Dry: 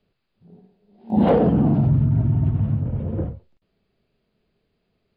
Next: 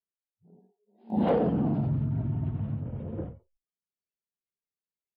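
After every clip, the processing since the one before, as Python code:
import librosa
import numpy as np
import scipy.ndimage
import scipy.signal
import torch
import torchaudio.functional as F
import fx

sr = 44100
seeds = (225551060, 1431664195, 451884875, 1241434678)

y = fx.noise_reduce_blind(x, sr, reduce_db=29)
y = fx.low_shelf(y, sr, hz=110.0, db=-8.5)
y = y * librosa.db_to_amplitude(-7.0)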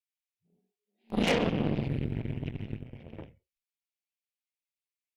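y = fx.high_shelf_res(x, sr, hz=1600.0, db=12.5, q=3.0)
y = fx.cheby_harmonics(y, sr, harmonics=(4, 7), levels_db=(-14, -19), full_scale_db=-14.0)
y = y * librosa.db_to_amplitude(-2.0)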